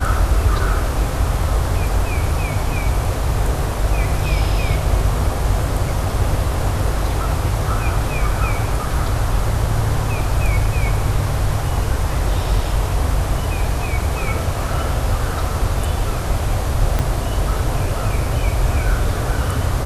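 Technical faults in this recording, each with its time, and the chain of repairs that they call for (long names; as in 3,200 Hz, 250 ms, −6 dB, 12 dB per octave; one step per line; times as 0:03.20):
0:16.99: click −6 dBFS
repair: click removal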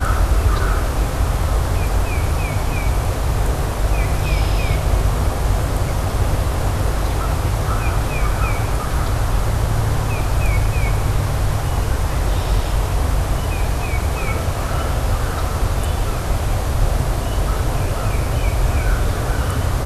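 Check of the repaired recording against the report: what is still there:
0:16.99: click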